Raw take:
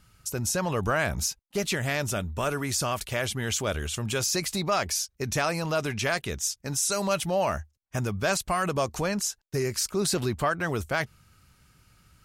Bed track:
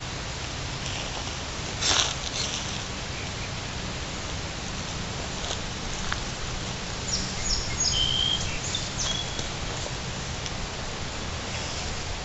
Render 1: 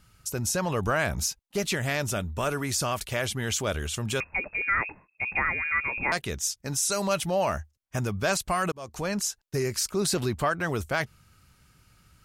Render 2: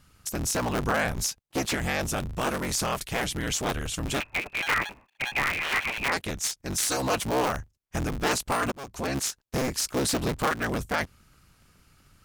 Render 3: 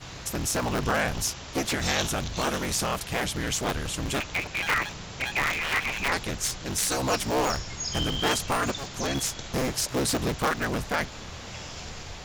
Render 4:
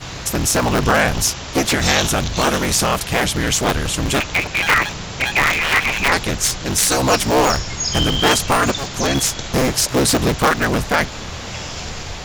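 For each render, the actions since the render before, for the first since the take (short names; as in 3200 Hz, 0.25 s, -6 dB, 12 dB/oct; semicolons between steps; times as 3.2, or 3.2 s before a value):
4.2–6.12 inverted band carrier 2600 Hz; 8.72–9.16 fade in
cycle switcher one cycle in 3, inverted
add bed track -7.5 dB
gain +10.5 dB; limiter -2 dBFS, peak gain reduction 2.5 dB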